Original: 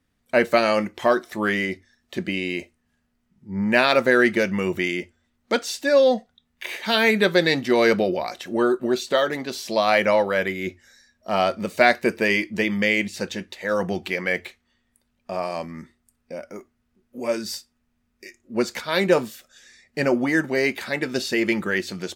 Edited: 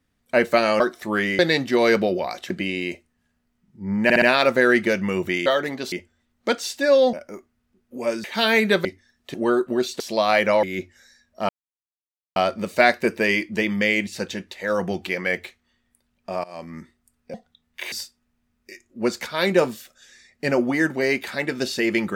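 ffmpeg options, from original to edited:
-filter_complex "[0:a]asplit=19[s0][s1][s2][s3][s4][s5][s6][s7][s8][s9][s10][s11][s12][s13][s14][s15][s16][s17][s18];[s0]atrim=end=0.802[s19];[s1]atrim=start=1.098:end=1.692[s20];[s2]atrim=start=7.358:end=8.472[s21];[s3]atrim=start=2.178:end=3.782[s22];[s4]atrim=start=3.718:end=3.782[s23];[s5]atrim=start=3.718:end=3.782[s24];[s6]atrim=start=3.718:end=4.962[s25];[s7]atrim=start=9.128:end=9.592[s26];[s8]atrim=start=4.958:end=6.172[s27];[s9]atrim=start=16.348:end=17.462[s28];[s10]atrim=start=6.748:end=7.362[s29];[s11]atrim=start=1.688:end=2.182[s30];[s12]atrim=start=8.468:end=9.132[s31];[s13]atrim=start=9.588:end=10.222[s32];[s14]atrim=start=10.508:end=11.37,asetpts=PTS-STARTPTS,afade=t=out:st=0.858:d=0.004:c=hsin,apad=pad_dur=0.87[s33];[s15]atrim=start=11.37:end=15.45,asetpts=PTS-STARTPTS,afade=t=in:d=0.004:c=hsin,afade=t=out:st=4.076:d=0.004:c=hsin:silence=0.0841395[s34];[s16]atrim=start=15.45:end=16.352,asetpts=PTS-STARTPTS,afade=t=in:d=0.31:silence=0.0841395[s35];[s17]atrim=start=6.168:end=6.752[s36];[s18]atrim=start=17.458[s37];[s19][s20]acrossfade=d=0.004:c1=hsin:c2=hsin[s38];[s38][s21]acrossfade=d=0.004:c1=hsin:c2=hsin[s39];[s39][s22]acrossfade=d=0.004:c1=hsin:c2=hsin[s40];[s40][s23]acrossfade=d=0.004:c1=hsin:c2=hsin[s41];[s41][s24]acrossfade=d=0.004:c1=hsin:c2=hsin[s42];[s42][s25]acrossfade=d=0.004:c1=hsin:c2=hsin[s43];[s43][s26]acrossfade=d=0.004:c1=hsin:c2=hsin[s44];[s44][s27]acrossfade=d=0.004:c1=hsin:c2=hsin[s45];[s45][s28]acrossfade=d=0.004:c1=hsin:c2=hsin[s46];[s46][s29]acrossfade=d=0.004:c1=hsin:c2=hsin[s47];[s47][s30]acrossfade=d=0.004:c1=hsin:c2=hsin[s48];[s48][s31]acrossfade=d=0.004:c1=hsin:c2=hsin[s49];[s49][s32]acrossfade=d=0.004:c1=hsin:c2=hsin[s50];[s33][s34][s35]concat=n=3:v=0:a=1[s51];[s50][s51]acrossfade=d=0.004:c1=hsin:c2=hsin[s52];[s52][s36]acrossfade=d=0.004:c1=hsin:c2=hsin[s53];[s53][s37]acrossfade=d=0.004:c1=hsin:c2=hsin"

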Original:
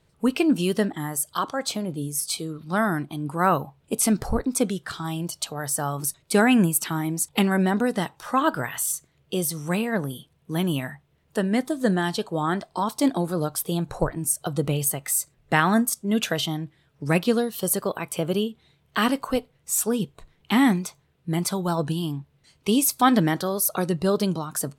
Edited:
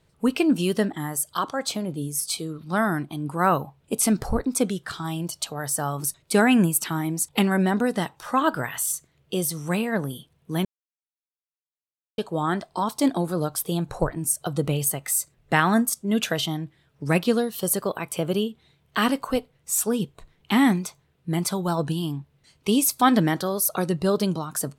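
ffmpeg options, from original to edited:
-filter_complex "[0:a]asplit=3[s0][s1][s2];[s0]atrim=end=10.65,asetpts=PTS-STARTPTS,afade=t=out:st=10.646:d=0.004:c=hsin[s3];[s1]atrim=start=10.65:end=12.18,asetpts=PTS-STARTPTS,volume=0[s4];[s2]atrim=start=12.18,asetpts=PTS-STARTPTS,afade=t=in:d=0.004:c=hsin[s5];[s3][s4][s5]concat=n=3:v=0:a=1"

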